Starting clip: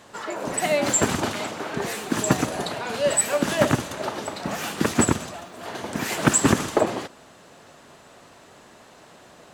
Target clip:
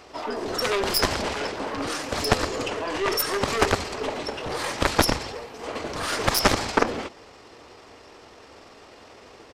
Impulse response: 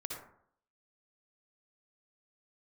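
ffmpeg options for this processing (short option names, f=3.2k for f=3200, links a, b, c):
-af "aeval=exprs='0.631*(cos(1*acos(clip(val(0)/0.631,-1,1)))-cos(1*PI/2))+0.0794*(cos(2*acos(clip(val(0)/0.631,-1,1)))-cos(2*PI/2))+0.1*(cos(6*acos(clip(val(0)/0.631,-1,1)))-cos(6*PI/2))+0.224*(cos(7*acos(clip(val(0)/0.631,-1,1)))-cos(7*PI/2))+0.0891*(cos(8*acos(clip(val(0)/0.631,-1,1)))-cos(8*PI/2))':c=same,equalizer=f=230:t=o:w=0.96:g=-12.5,asetrate=30296,aresample=44100,atempo=1.45565"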